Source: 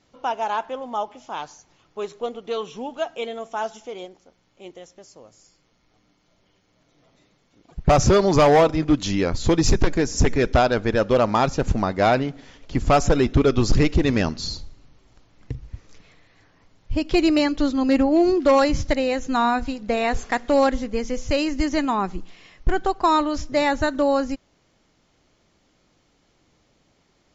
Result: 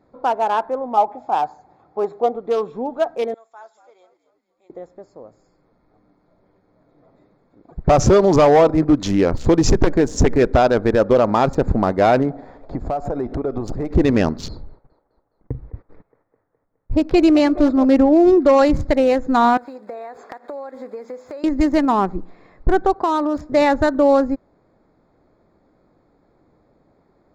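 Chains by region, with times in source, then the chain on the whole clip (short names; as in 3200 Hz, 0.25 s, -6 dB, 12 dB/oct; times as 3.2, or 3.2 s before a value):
0.97–2.36 HPF 51 Hz + bell 770 Hz +13 dB 0.27 oct
3.34–4.7 HPF 440 Hz 6 dB/oct + differentiator + frequency-shifting echo 0.237 s, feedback 44%, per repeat -86 Hz, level -14 dB
12.3–13.91 bell 710 Hz +9 dB 0.73 oct + compressor 16:1, threshold -25 dBFS
14.48–17.85 gate -47 dBFS, range -21 dB + low-pass opened by the level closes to 2100 Hz, open at -15.5 dBFS + band-limited delay 0.208 s, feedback 62%, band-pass 990 Hz, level -11 dB
19.57–21.44 block floating point 5-bit + HPF 500 Hz + compressor 12:1, threshold -34 dBFS
22.93–23.5 HPF 140 Hz 6 dB/oct + compressor 4:1, threshold -21 dBFS
whole clip: Wiener smoothing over 15 samples; bell 480 Hz +6 dB 2.6 oct; limiter -8 dBFS; gain +2 dB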